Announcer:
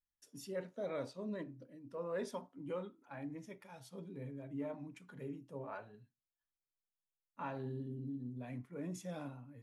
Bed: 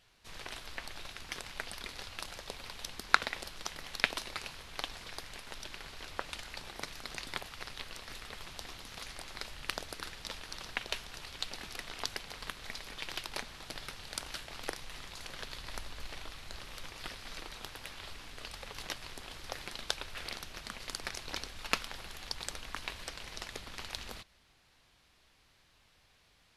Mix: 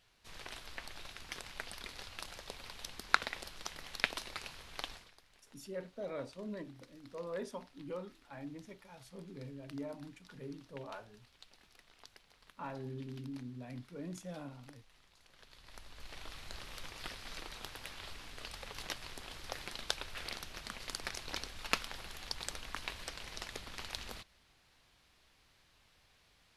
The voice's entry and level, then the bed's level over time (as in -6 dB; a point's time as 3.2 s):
5.20 s, -1.0 dB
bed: 4.93 s -3.5 dB
5.15 s -20 dB
15.25 s -20 dB
16.34 s -1.5 dB